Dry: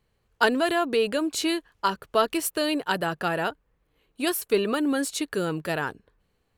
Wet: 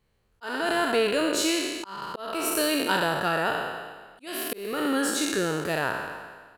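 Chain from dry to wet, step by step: spectral trails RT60 1.42 s; speakerphone echo 0.3 s, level -18 dB; auto swell 0.44 s; gain -2 dB

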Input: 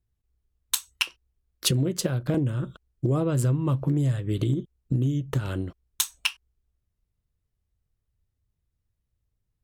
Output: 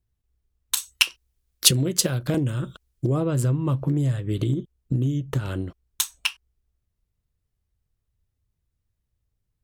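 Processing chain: 0.77–3.07 high shelf 2400 Hz +9.5 dB; gain +1 dB

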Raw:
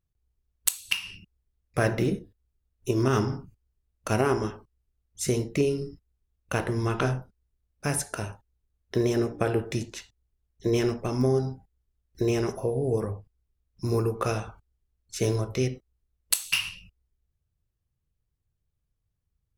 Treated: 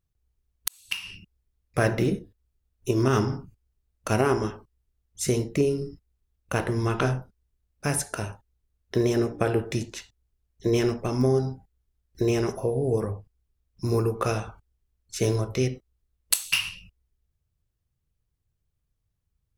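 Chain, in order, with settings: 0.68–1.12 fade in; 5.48–6.56 dynamic EQ 3100 Hz, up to -5 dB, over -48 dBFS, Q 0.83; gain +1.5 dB

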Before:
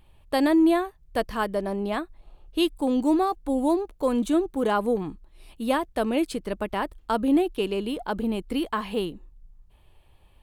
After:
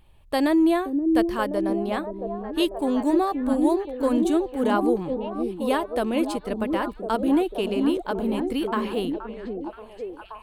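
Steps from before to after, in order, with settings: delay with a stepping band-pass 0.526 s, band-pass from 280 Hz, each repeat 0.7 oct, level -2 dB

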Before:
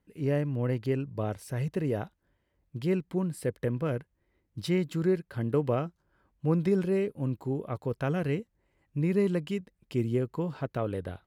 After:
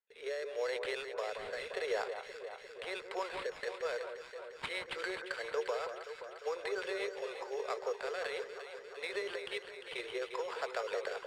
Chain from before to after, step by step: steep high-pass 430 Hz 72 dB/oct; gate with hold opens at -58 dBFS; bell 2100 Hz +10.5 dB 1.7 oct; compressor, threshold -32 dBFS, peak gain reduction 9 dB; limiter -27.5 dBFS, peak gain reduction 7 dB; transient shaper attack +1 dB, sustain +5 dB; rotary speaker horn 0.85 Hz, later 7.5 Hz, at 3.27; sample-rate reducer 6100 Hz, jitter 0%; air absorption 98 m; on a send: echo with dull and thin repeats by turns 0.175 s, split 1600 Hz, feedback 81%, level -7 dB; on the sum: gain +2.5 dB

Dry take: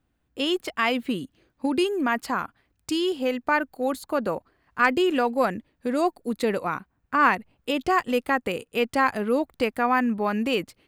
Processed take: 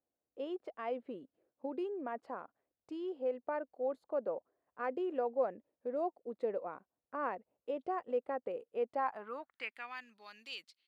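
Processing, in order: band-pass sweep 550 Hz -> 4200 Hz, 8.87–10.05; gain -7.5 dB

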